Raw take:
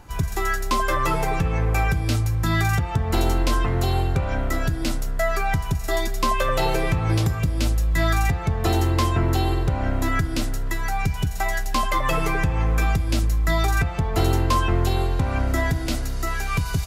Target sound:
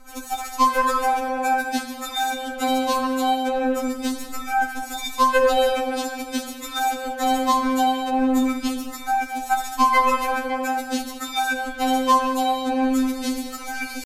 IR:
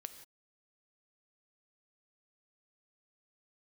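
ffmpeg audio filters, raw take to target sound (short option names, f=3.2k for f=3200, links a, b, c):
-filter_complex "[0:a]atempo=1.2[a];[1:a]atrim=start_sample=2205,asetrate=35721,aresample=44100[b];[a][b]afir=irnorm=-1:irlink=0,afftfilt=real='re*3.46*eq(mod(b,12),0)':imag='im*3.46*eq(mod(b,12),0)':win_size=2048:overlap=0.75,volume=7dB"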